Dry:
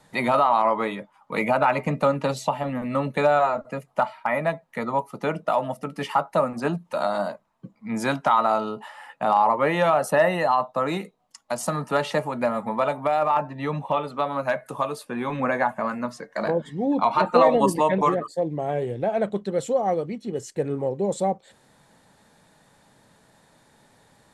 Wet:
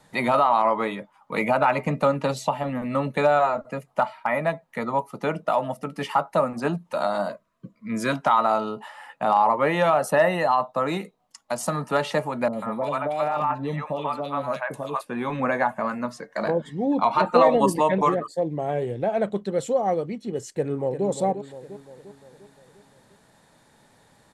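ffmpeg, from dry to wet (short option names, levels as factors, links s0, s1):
-filter_complex "[0:a]asettb=1/sr,asplit=3[s0][s1][s2];[s0]atrim=end=7.294[s3];[s1]atrim=start=7.29:end=8.13,asetpts=PTS-STARTPTS,afade=t=in:d=0.004:c=qsin,afade=t=out:st=0.836:d=0.004:c=qsin,asuperstop=centerf=810:order=20:qfactor=3.1[s4];[s2]atrim=start=8.126[s5];[s3][s4]acrossfade=d=0.004:c1=hsin:c2=qsin[s6];[s6][s5]acrossfade=d=0.004:c1=qsin:c2=hsin,asettb=1/sr,asplit=3[s7][s8][s9];[s7]atrim=end=12.484[s10];[s8]atrim=start=12.48:end=15.01,asetpts=PTS-STARTPTS,afade=t=in:d=0.004:c=qsin,afade=t=out:st=2.526:d=0.004:c=qsin,acrossover=split=700|2500[s11][s12][s13];[s13]adelay=50[s14];[s12]adelay=140[s15];[s11][s15][s14]amix=inputs=3:normalize=0,atrim=end_sample=111573[s16];[s9]atrim=start=15.006[s17];[s10][s16]acrossfade=d=0.004:c1=hsin:c2=qsin[s18];[s18][s17]acrossfade=d=0.004:c1=qsin:c2=hsin,asplit=2[s19][s20];[s20]afade=t=in:st=20.52:d=0.01,afade=t=out:st=21.06:d=0.01,aecho=0:1:350|700|1050|1400|1750|2100:0.334965|0.184231|0.101327|0.0557299|0.0306514|0.0168583[s21];[s19][s21]amix=inputs=2:normalize=0"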